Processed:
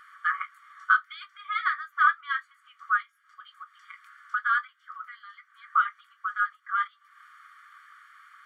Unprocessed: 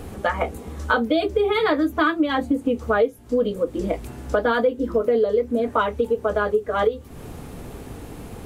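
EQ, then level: polynomial smoothing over 41 samples; brick-wall FIR high-pass 1100 Hz; +2.5 dB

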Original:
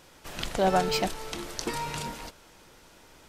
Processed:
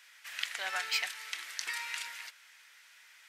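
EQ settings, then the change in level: resonant high-pass 1900 Hz, resonance Q 2.8; -4.0 dB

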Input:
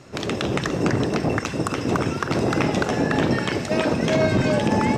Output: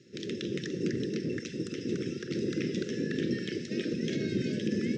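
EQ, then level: elliptic band-stop 450–1700 Hz, stop band 80 dB; speaker cabinet 270–5200 Hz, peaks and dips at 280 Hz -7 dB, 440 Hz -8 dB, 630 Hz -7 dB, 970 Hz -9 dB, 1500 Hz -7 dB, 4400 Hz -6 dB; bell 2300 Hz -13 dB 1.4 oct; 0.0 dB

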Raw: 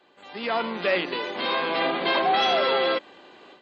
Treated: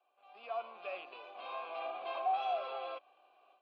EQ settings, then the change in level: vowel filter a; low shelf 310 Hz -10 dB; -6.0 dB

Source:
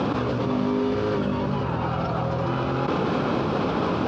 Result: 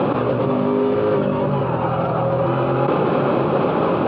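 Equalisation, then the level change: air absorption 150 m; speaker cabinet 110–4000 Hz, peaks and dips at 140 Hz +6 dB, 370 Hz +6 dB, 560 Hz +8 dB, 830 Hz +4 dB, 1200 Hz +4 dB, 2600 Hz +3 dB; +2.5 dB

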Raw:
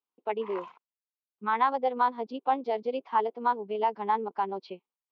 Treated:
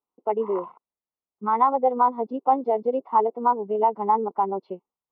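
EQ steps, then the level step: polynomial smoothing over 65 samples; +7.0 dB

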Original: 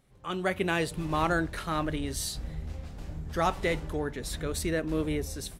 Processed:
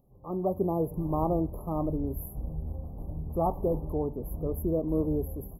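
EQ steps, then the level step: brick-wall FIR band-stop 1300–11000 Hz; Butterworth band-stop 1600 Hz, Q 0.79; +2.0 dB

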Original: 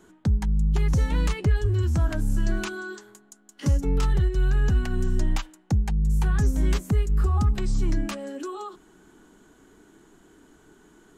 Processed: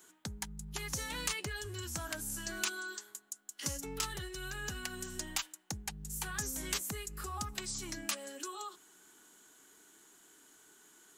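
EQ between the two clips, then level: tilt +4.5 dB/oct; -7.5 dB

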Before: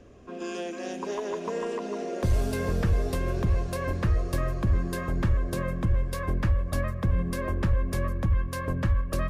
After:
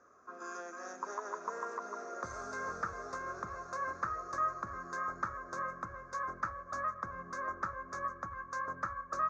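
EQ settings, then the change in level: double band-pass 2900 Hz, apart 2.3 oct; air absorption 180 m; +11.0 dB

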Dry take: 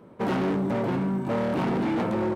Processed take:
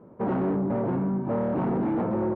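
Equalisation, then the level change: LPF 1100 Hz 12 dB/oct; 0.0 dB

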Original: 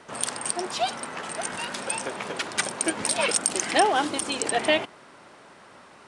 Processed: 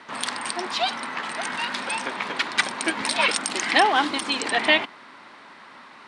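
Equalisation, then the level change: graphic EQ 250/1000/2000/4000 Hz +11/+11/+11/+12 dB; -8.0 dB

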